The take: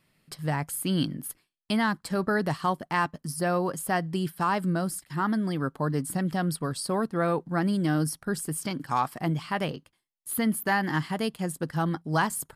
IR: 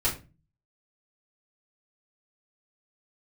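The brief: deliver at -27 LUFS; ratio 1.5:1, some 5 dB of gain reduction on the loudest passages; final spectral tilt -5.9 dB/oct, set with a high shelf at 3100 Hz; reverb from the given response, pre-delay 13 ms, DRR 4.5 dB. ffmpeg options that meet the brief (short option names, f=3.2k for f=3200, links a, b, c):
-filter_complex "[0:a]highshelf=f=3.1k:g=-5,acompressor=threshold=-35dB:ratio=1.5,asplit=2[a][b];[1:a]atrim=start_sample=2205,adelay=13[c];[b][c]afir=irnorm=-1:irlink=0,volume=-14dB[d];[a][d]amix=inputs=2:normalize=0,volume=4.5dB"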